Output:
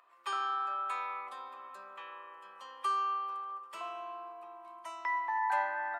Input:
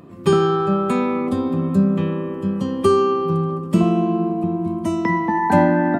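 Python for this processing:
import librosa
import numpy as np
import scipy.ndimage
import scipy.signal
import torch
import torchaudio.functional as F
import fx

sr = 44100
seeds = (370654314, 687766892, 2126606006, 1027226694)

y = scipy.signal.sosfilt(scipy.signal.butter(4, 950.0, 'highpass', fs=sr, output='sos'), x)
y = fx.high_shelf(y, sr, hz=3000.0, db=-11.0)
y = F.gain(torch.from_numpy(y), -6.5).numpy()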